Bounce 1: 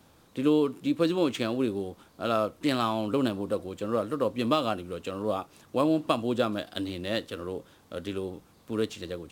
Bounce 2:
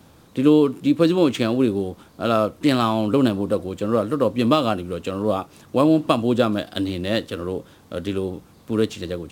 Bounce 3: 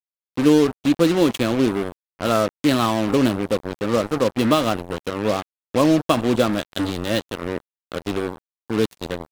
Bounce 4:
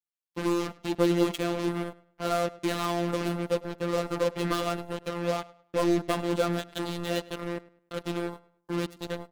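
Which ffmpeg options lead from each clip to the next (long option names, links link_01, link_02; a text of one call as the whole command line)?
ffmpeg -i in.wav -af "equalizer=frequency=130:width=0.42:gain=4.5,volume=6dB" out.wav
ffmpeg -i in.wav -af "acrusher=bits=3:mix=0:aa=0.5" out.wav
ffmpeg -i in.wav -filter_complex "[0:a]asoftclip=type=tanh:threshold=-13.5dB,afftfilt=real='hypot(re,im)*cos(PI*b)':imag='0':win_size=1024:overlap=0.75,asplit=2[link_01][link_02];[link_02]adelay=103,lowpass=frequency=4400:poles=1,volume=-20dB,asplit=2[link_03][link_04];[link_04]adelay=103,lowpass=frequency=4400:poles=1,volume=0.33,asplit=2[link_05][link_06];[link_06]adelay=103,lowpass=frequency=4400:poles=1,volume=0.33[link_07];[link_01][link_03][link_05][link_07]amix=inputs=4:normalize=0,volume=-2dB" out.wav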